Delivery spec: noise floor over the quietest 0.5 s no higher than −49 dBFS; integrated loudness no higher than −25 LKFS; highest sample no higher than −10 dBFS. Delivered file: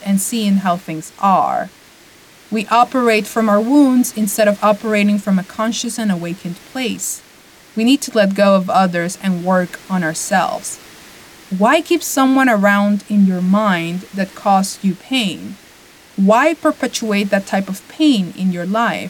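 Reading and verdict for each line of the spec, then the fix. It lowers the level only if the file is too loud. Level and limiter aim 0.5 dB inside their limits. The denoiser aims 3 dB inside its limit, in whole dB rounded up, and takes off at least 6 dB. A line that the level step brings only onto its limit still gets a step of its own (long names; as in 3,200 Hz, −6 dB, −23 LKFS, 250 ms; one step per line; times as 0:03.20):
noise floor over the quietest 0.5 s −44 dBFS: out of spec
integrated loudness −15.5 LKFS: out of spec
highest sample −2.0 dBFS: out of spec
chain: level −10 dB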